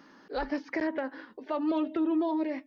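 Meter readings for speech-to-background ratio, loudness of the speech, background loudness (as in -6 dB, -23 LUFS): 17.5 dB, -31.5 LUFS, -49.0 LUFS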